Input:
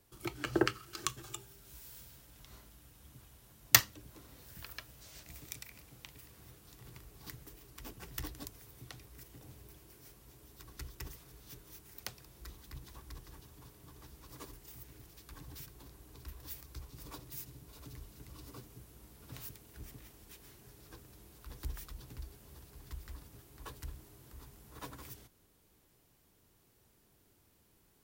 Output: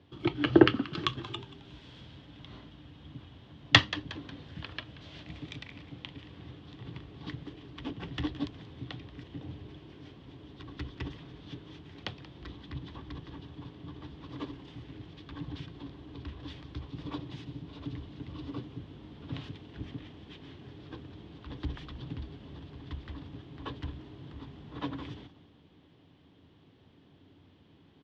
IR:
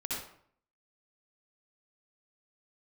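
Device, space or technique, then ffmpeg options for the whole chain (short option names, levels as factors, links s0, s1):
frequency-shifting delay pedal into a guitar cabinet: -filter_complex "[0:a]asplit=4[s0][s1][s2][s3];[s1]adelay=181,afreqshift=-100,volume=0.141[s4];[s2]adelay=362,afreqshift=-200,volume=0.0582[s5];[s3]adelay=543,afreqshift=-300,volume=0.0237[s6];[s0][s4][s5][s6]amix=inputs=4:normalize=0,highpass=85,equalizer=f=89:t=q:w=4:g=9,equalizer=f=160:t=q:w=4:g=7,equalizer=f=280:t=q:w=4:g=10,equalizer=f=1400:t=q:w=4:g=-4,equalizer=f=2300:t=q:w=4:g=-3,equalizer=f=3300:t=q:w=4:g=7,lowpass=f=3500:w=0.5412,lowpass=f=3500:w=1.3066,volume=2.51"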